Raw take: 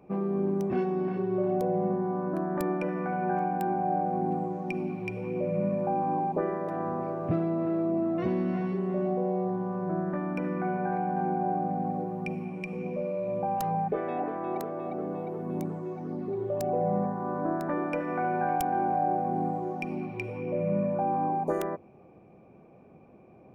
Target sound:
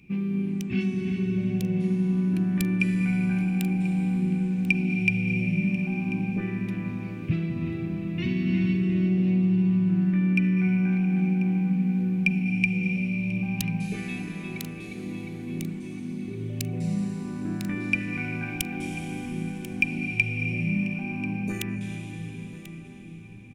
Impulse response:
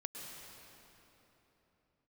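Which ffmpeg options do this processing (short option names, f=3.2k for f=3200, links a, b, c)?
-filter_complex "[0:a]firequalizer=gain_entry='entry(220,0);entry(570,-25);entry(1200,-14);entry(2400,14);entry(5100,8)':delay=0.05:min_phase=1,aecho=1:1:1040:0.168,asplit=2[a][b];[1:a]atrim=start_sample=2205,asetrate=22491,aresample=44100,lowshelf=f=170:g=11[c];[b][c]afir=irnorm=-1:irlink=0,volume=-2dB[d];[a][d]amix=inputs=2:normalize=0,volume=-2.5dB"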